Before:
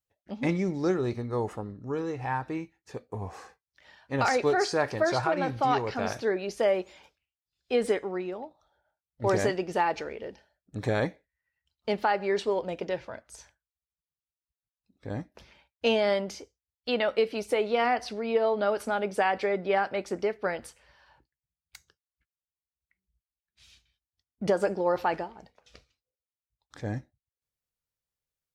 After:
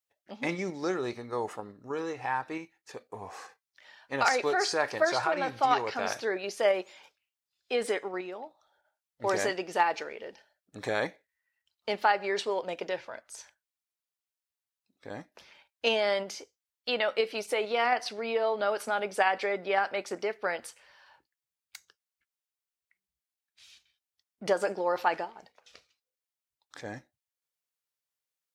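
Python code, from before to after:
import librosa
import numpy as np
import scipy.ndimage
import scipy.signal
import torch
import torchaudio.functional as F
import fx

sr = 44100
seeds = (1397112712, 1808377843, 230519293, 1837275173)

p1 = fx.highpass(x, sr, hz=750.0, slope=6)
p2 = fx.level_steps(p1, sr, step_db=13)
y = p1 + (p2 * 10.0 ** (-3.0 / 20.0))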